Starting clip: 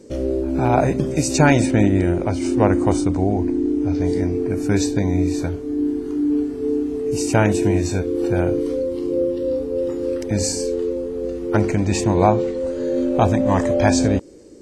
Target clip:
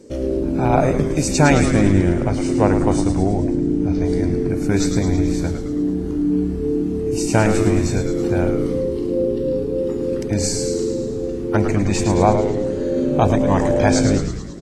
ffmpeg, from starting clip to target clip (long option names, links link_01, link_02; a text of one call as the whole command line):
ffmpeg -i in.wav -filter_complex "[0:a]asplit=9[link_01][link_02][link_03][link_04][link_05][link_06][link_07][link_08][link_09];[link_02]adelay=108,afreqshift=-110,volume=-7dB[link_10];[link_03]adelay=216,afreqshift=-220,volume=-11.3dB[link_11];[link_04]adelay=324,afreqshift=-330,volume=-15.6dB[link_12];[link_05]adelay=432,afreqshift=-440,volume=-19.9dB[link_13];[link_06]adelay=540,afreqshift=-550,volume=-24.2dB[link_14];[link_07]adelay=648,afreqshift=-660,volume=-28.5dB[link_15];[link_08]adelay=756,afreqshift=-770,volume=-32.8dB[link_16];[link_09]adelay=864,afreqshift=-880,volume=-37.1dB[link_17];[link_01][link_10][link_11][link_12][link_13][link_14][link_15][link_16][link_17]amix=inputs=9:normalize=0" out.wav